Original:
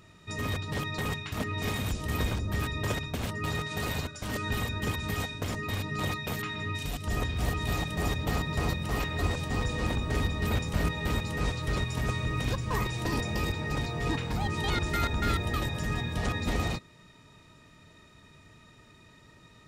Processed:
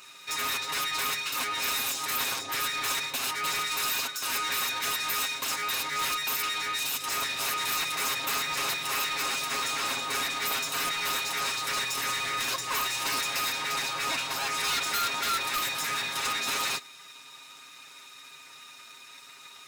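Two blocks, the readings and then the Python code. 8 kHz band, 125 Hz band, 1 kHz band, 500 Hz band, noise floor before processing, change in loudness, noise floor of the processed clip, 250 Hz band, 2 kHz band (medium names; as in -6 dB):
+12.5 dB, -21.5 dB, +5.0 dB, -5.5 dB, -56 dBFS, +3.5 dB, -49 dBFS, -12.5 dB, +4.5 dB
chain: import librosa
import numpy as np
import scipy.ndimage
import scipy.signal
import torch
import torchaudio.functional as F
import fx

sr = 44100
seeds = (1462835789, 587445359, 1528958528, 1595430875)

y = fx.lower_of_two(x, sr, delay_ms=0.78)
y = scipy.signal.sosfilt(scipy.signal.butter(2, 550.0, 'highpass', fs=sr, output='sos'), y)
y = fx.high_shelf(y, sr, hz=2100.0, db=10.5)
y = y + 0.74 * np.pad(y, (int(7.4 * sr / 1000.0), 0))[:len(y)]
y = 10.0 ** (-28.5 / 20.0) * np.tanh(y / 10.0 ** (-28.5 / 20.0))
y = F.gain(torch.from_numpy(y), 4.0).numpy()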